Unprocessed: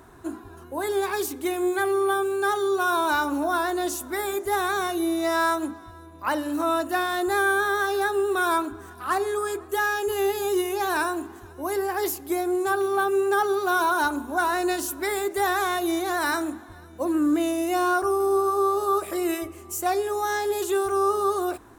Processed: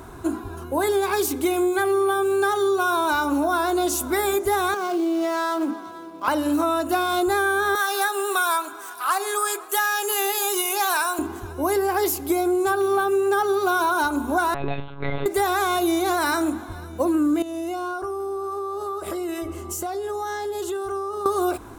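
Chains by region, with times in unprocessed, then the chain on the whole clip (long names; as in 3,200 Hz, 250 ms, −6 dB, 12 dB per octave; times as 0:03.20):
0:04.74–0:06.28: running median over 15 samples + high-pass filter 200 Hz 24 dB per octave + downward compressor 4 to 1, threshold −28 dBFS
0:07.75–0:11.19: high-pass filter 750 Hz + high-shelf EQ 5,400 Hz +6.5 dB
0:14.54–0:15.26: tuned comb filter 82 Hz, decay 0.31 s, mix 80% + one-pitch LPC vocoder at 8 kHz 140 Hz
0:17.42–0:21.26: high-shelf EQ 7,900 Hz −8 dB + notch filter 2,400 Hz, Q 5.8 + downward compressor 10 to 1, threshold −34 dBFS
whole clip: low-shelf EQ 110 Hz +4 dB; notch filter 1,800 Hz, Q 8.1; downward compressor, threshold −27 dBFS; level +8.5 dB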